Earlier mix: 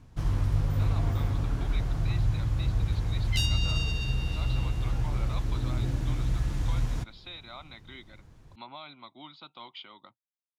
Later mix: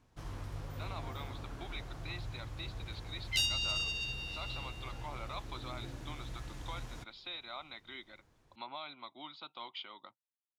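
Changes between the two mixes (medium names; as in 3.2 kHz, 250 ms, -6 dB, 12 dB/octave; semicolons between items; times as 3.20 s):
first sound -7.5 dB; master: add tone controls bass -10 dB, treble 0 dB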